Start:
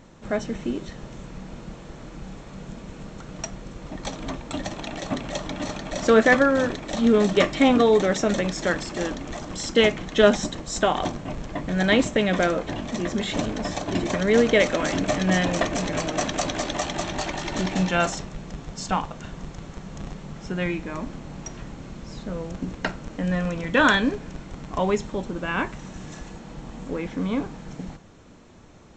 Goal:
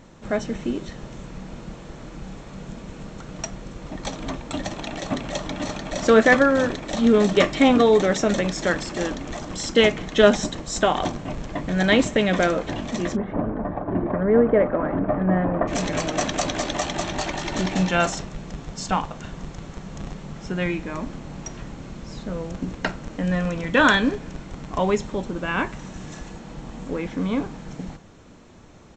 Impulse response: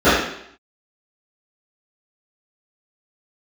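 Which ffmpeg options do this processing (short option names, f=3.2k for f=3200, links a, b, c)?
-filter_complex "[0:a]asplit=3[a][b][c];[a]afade=t=out:st=13.15:d=0.02[d];[b]lowpass=f=1.4k:w=0.5412,lowpass=f=1.4k:w=1.3066,afade=t=in:st=13.15:d=0.02,afade=t=out:st=15.67:d=0.02[e];[c]afade=t=in:st=15.67:d=0.02[f];[d][e][f]amix=inputs=3:normalize=0,asplit=2[g][h];[h]adelay=190,highpass=300,lowpass=3.4k,asoftclip=type=hard:threshold=-12dB,volume=-29dB[i];[g][i]amix=inputs=2:normalize=0,volume=1.5dB"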